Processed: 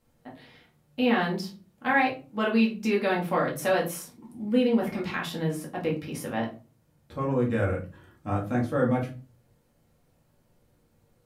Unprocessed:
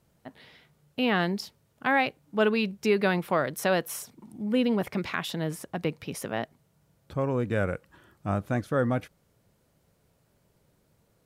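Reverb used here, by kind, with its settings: shoebox room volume 170 m³, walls furnished, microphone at 2.2 m; gain -5 dB

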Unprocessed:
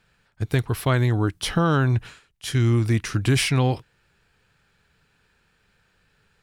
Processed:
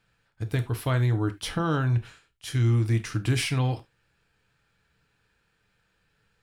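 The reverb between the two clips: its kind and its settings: non-linear reverb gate 0.11 s falling, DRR 8 dB; gain -6.5 dB

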